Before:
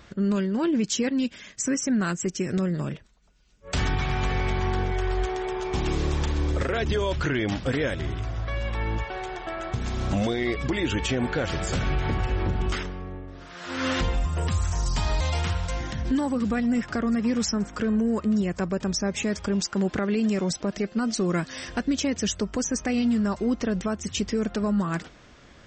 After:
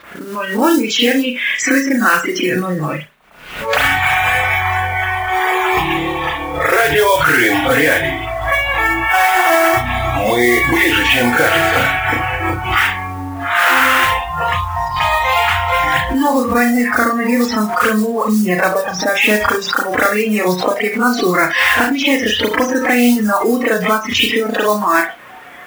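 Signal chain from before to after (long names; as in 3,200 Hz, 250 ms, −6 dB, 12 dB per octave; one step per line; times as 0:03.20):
low-pass filter 2,700 Hz 12 dB per octave
downward compressor 6 to 1, threshold −35 dBFS, peak gain reduction 14 dB
high-pass filter 1,400 Hz 6 dB per octave
convolution reverb, pre-delay 33 ms, DRR −12 dB
noise that follows the level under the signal 14 dB
noise reduction from a noise print of the clip's start 15 dB
boost into a limiter +24.5 dB
background raised ahead of every attack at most 78 dB per second
level −1.5 dB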